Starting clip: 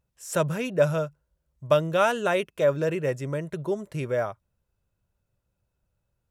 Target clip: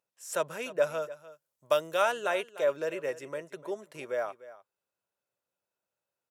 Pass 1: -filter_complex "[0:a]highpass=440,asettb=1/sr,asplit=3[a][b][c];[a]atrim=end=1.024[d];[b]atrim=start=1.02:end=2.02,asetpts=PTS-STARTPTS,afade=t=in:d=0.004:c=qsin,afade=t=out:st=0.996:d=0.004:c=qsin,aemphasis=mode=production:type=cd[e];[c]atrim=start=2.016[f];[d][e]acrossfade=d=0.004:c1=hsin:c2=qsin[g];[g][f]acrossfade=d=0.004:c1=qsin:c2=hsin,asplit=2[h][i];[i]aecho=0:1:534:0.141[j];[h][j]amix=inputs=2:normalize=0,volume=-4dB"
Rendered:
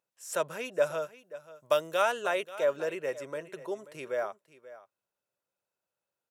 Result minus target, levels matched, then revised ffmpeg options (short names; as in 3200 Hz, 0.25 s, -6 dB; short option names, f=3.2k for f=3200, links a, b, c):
echo 0.236 s late
-filter_complex "[0:a]highpass=440,asettb=1/sr,asplit=3[a][b][c];[a]atrim=end=1.024[d];[b]atrim=start=1.02:end=2.02,asetpts=PTS-STARTPTS,afade=t=in:d=0.004:c=qsin,afade=t=out:st=0.996:d=0.004:c=qsin,aemphasis=mode=production:type=cd[e];[c]atrim=start=2.016[f];[d][e]acrossfade=d=0.004:c1=hsin:c2=qsin[g];[g][f]acrossfade=d=0.004:c1=qsin:c2=hsin,asplit=2[h][i];[i]aecho=0:1:298:0.141[j];[h][j]amix=inputs=2:normalize=0,volume=-4dB"